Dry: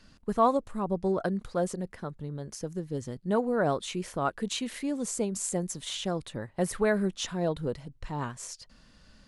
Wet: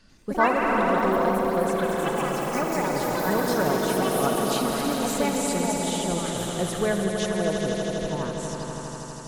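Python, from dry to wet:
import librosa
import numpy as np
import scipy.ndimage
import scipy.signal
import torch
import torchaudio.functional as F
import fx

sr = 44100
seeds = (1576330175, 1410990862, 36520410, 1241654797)

y = fx.echo_swell(x, sr, ms=81, loudest=5, wet_db=-7.5)
y = fx.echo_pitch(y, sr, ms=94, semitones=5, count=3, db_per_echo=-3.0)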